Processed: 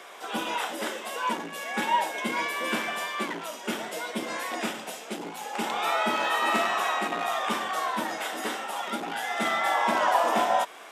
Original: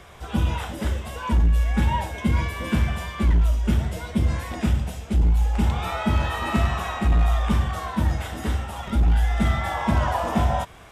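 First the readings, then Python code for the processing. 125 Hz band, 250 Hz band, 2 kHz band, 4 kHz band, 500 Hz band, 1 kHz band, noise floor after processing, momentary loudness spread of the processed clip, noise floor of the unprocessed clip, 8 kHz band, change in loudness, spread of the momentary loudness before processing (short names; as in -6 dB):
-28.0 dB, -9.0 dB, +3.5 dB, +3.5 dB, +1.5 dB, +3.0 dB, -42 dBFS, 9 LU, -37 dBFS, +3.5 dB, -4.5 dB, 7 LU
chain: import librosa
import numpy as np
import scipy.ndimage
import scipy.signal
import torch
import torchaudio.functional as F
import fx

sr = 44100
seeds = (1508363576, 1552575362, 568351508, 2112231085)

y = scipy.signal.sosfilt(scipy.signal.bessel(6, 430.0, 'highpass', norm='mag', fs=sr, output='sos'), x)
y = F.gain(torch.from_numpy(y), 3.5).numpy()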